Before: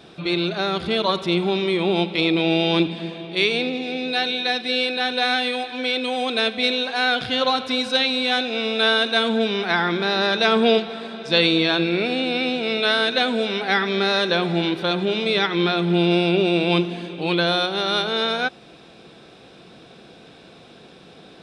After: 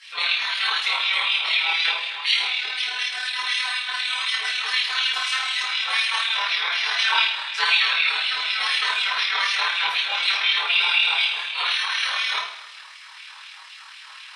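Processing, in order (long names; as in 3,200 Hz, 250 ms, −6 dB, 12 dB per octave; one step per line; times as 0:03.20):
gate on every frequency bin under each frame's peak −15 dB weak
auto-filter high-pass sine 2.7 Hz 970–2,700 Hz
coupled-rooms reverb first 0.75 s, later 2 s, from −16 dB, DRR −7 dB
in parallel at −2 dB: downward compressor, threshold −32 dBFS, peak gain reduction 18 dB
on the sum: time stretch by overlap-add 0.67×, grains 53 ms
level −2 dB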